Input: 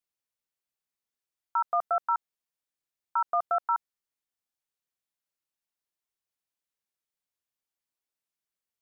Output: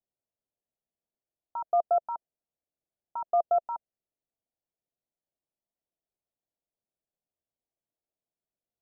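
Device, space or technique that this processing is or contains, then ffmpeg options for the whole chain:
under water: -af "lowpass=frequency=730:width=0.5412,lowpass=frequency=730:width=1.3066,equalizer=frequency=660:width_type=o:width=0.31:gain=5,volume=4dB"

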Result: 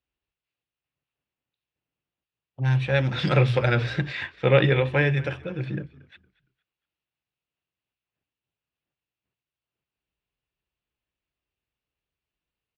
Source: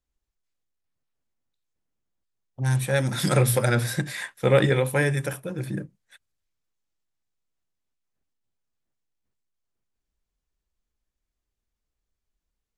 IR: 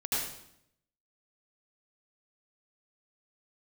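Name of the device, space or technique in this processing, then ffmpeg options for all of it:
frequency-shifting delay pedal into a guitar cabinet: -filter_complex "[0:a]asplit=4[link_01][link_02][link_03][link_04];[link_02]adelay=231,afreqshift=-59,volume=-20.5dB[link_05];[link_03]adelay=462,afreqshift=-118,volume=-29.9dB[link_06];[link_04]adelay=693,afreqshift=-177,volume=-39.2dB[link_07];[link_01][link_05][link_06][link_07]amix=inputs=4:normalize=0,highpass=85,equalizer=frequency=140:width_type=q:width=4:gain=3,equalizer=frequency=220:width_type=q:width=4:gain=-5,equalizer=frequency=2700:width_type=q:width=4:gain=9,lowpass=frequency=4200:width=0.5412,lowpass=frequency=4200:width=1.3066"

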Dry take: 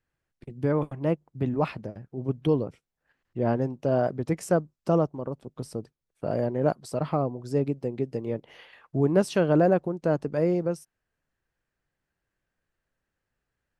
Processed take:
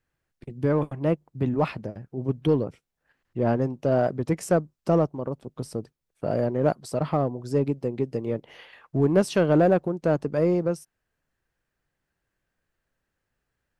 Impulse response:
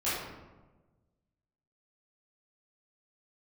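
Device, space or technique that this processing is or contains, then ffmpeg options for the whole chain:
parallel distortion: -filter_complex "[0:a]asplit=2[link_01][link_02];[link_02]asoftclip=type=hard:threshold=-22dB,volume=-9.5dB[link_03];[link_01][link_03]amix=inputs=2:normalize=0"

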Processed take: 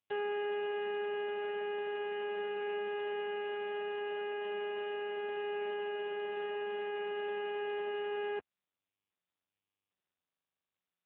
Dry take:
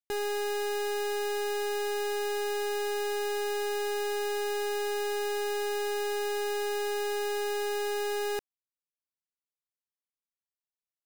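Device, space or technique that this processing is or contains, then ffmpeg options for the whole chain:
telephone: -filter_complex "[0:a]asplit=3[link_01][link_02][link_03];[link_01]afade=type=out:start_time=3.2:duration=0.02[link_04];[link_02]equalizer=frequency=97:width_type=o:width=1.8:gain=-11,afade=type=in:start_time=3.2:duration=0.02,afade=type=out:start_time=5.16:duration=0.02[link_05];[link_03]afade=type=in:start_time=5.16:duration=0.02[link_06];[link_04][link_05][link_06]amix=inputs=3:normalize=0,asplit=3[link_07][link_08][link_09];[link_07]afade=type=out:start_time=5.7:duration=0.02[link_10];[link_08]highpass=140,afade=type=in:start_time=5.7:duration=0.02,afade=type=out:start_time=6.11:duration=0.02[link_11];[link_09]afade=type=in:start_time=6.11:duration=0.02[link_12];[link_10][link_11][link_12]amix=inputs=3:normalize=0,highpass=300,lowpass=3600,volume=-2dB" -ar 8000 -c:a libopencore_amrnb -b:a 5900

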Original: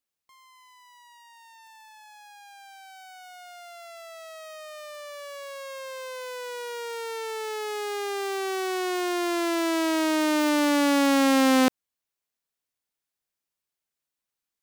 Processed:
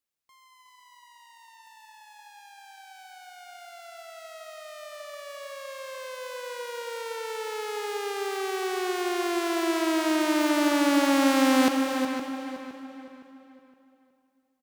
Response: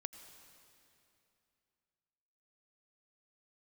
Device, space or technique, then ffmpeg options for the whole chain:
cave: -filter_complex "[0:a]aecho=1:1:368:0.355,asplit=2[link_01][link_02];[link_02]adelay=514,lowpass=frequency=3400:poles=1,volume=-9dB,asplit=2[link_03][link_04];[link_04]adelay=514,lowpass=frequency=3400:poles=1,volume=0.37,asplit=2[link_05][link_06];[link_06]adelay=514,lowpass=frequency=3400:poles=1,volume=0.37,asplit=2[link_07][link_08];[link_08]adelay=514,lowpass=frequency=3400:poles=1,volume=0.37[link_09];[link_01][link_03][link_05][link_07][link_09]amix=inputs=5:normalize=0[link_10];[1:a]atrim=start_sample=2205[link_11];[link_10][link_11]afir=irnorm=-1:irlink=0,volume=1.5dB"

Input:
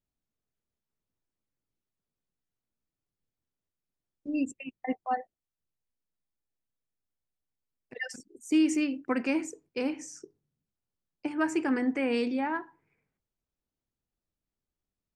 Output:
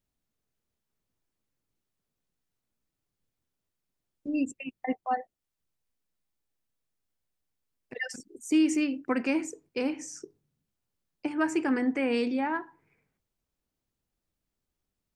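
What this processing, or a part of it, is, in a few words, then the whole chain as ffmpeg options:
parallel compression: -filter_complex "[0:a]asplit=2[link_01][link_02];[link_02]acompressor=threshold=-43dB:ratio=6,volume=-3dB[link_03];[link_01][link_03]amix=inputs=2:normalize=0"

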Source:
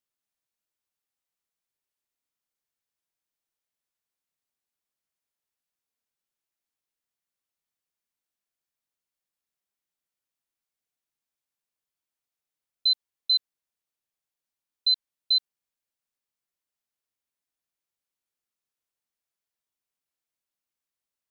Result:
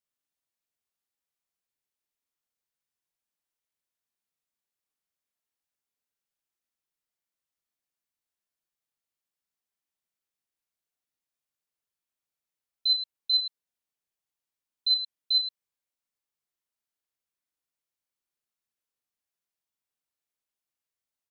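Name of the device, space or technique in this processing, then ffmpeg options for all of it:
slapback doubling: -filter_complex "[0:a]asplit=3[link_01][link_02][link_03];[link_02]adelay=39,volume=-3.5dB[link_04];[link_03]adelay=106,volume=-8.5dB[link_05];[link_01][link_04][link_05]amix=inputs=3:normalize=0,volume=-4dB"

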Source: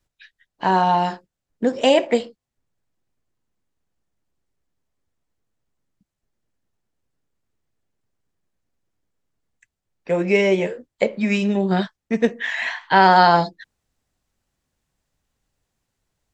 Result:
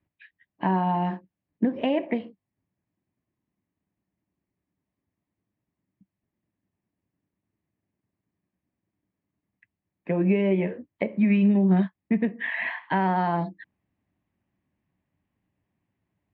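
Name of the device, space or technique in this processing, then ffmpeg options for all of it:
bass amplifier: -filter_complex "[0:a]asettb=1/sr,asplit=3[link_01][link_02][link_03];[link_01]atrim=end=10.114[link_04];[link_02]atrim=start=10.11:end=10.51,asetpts=PTS-STARTPTS,afade=type=in:duration=0.004:curve=qsin,afade=type=out:start_time=0.396:duration=0.004:curve=qsin,bandreject=frequency=2100:width=6.1[link_05];[link_03]atrim=start=10.506[link_06];[link_04][link_05]acrossfade=duration=0.004:curve1=hsin:curve2=qsin[link_07];[link_07][link_06]acrossfade=duration=0.004:curve1=qsin:curve2=hsin,acompressor=threshold=-22dB:ratio=3,highpass=85,equalizer=frequency=99:width_type=q:width=4:gain=5,equalizer=frequency=190:width_type=q:width=4:gain=7,equalizer=frequency=300:width_type=q:width=4:gain=6,equalizer=frequency=480:width_type=q:width=4:gain=-7,equalizer=frequency=790:width_type=q:width=4:gain=-3,equalizer=frequency=1400:width_type=q:width=4:gain=-10,lowpass=frequency=2400:width=0.5412,lowpass=frequency=2400:width=1.3066"

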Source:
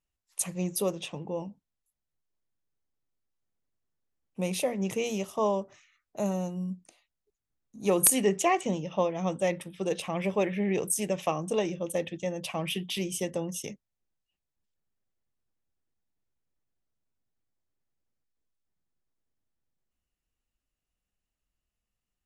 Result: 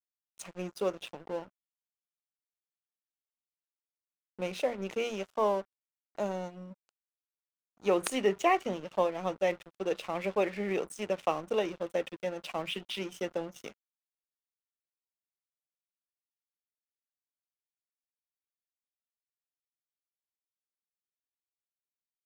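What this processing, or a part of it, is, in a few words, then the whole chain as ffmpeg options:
pocket radio on a weak battery: -af "highpass=280,lowpass=4100,aeval=exprs='sgn(val(0))*max(abs(val(0))-0.00501,0)':channel_layout=same,equalizer=frequency=1400:width_type=o:width=0.25:gain=5"

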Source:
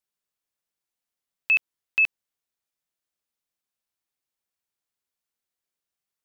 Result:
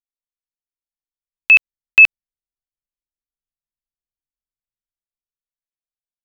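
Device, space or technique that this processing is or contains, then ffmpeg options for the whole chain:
voice memo with heavy noise removal: -af "anlmdn=0.158,dynaudnorm=framelen=210:gausssize=13:maxgain=11.5dB,volume=3dB"

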